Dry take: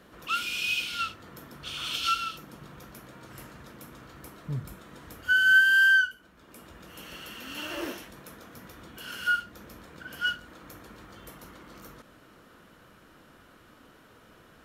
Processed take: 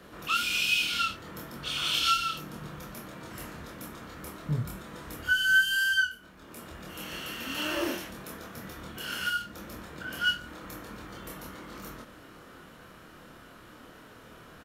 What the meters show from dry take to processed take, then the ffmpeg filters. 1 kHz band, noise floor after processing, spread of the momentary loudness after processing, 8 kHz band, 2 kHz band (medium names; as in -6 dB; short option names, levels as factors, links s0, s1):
+1.0 dB, -51 dBFS, 19 LU, +4.5 dB, -4.0 dB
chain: -filter_complex "[0:a]acrossover=split=230|3000[s0][s1][s2];[s1]acompressor=threshold=0.0224:ratio=2.5[s3];[s0][s3][s2]amix=inputs=3:normalize=0,asplit=2[s4][s5];[s5]asoftclip=type=tanh:threshold=0.0531,volume=0.376[s6];[s4][s6]amix=inputs=2:normalize=0,asplit=2[s7][s8];[s8]adelay=26,volume=0.794[s9];[s7][s9]amix=inputs=2:normalize=0"